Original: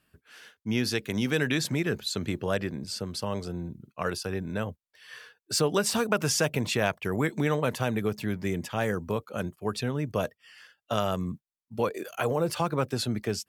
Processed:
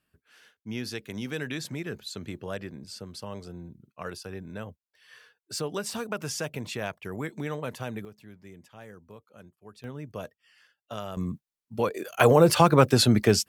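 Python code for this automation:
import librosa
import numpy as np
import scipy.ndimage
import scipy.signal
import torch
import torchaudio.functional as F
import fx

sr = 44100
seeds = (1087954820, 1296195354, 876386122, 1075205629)

y = fx.gain(x, sr, db=fx.steps((0.0, -7.0), (8.05, -18.5), (9.84, -9.0), (11.17, 1.0), (12.2, 9.5)))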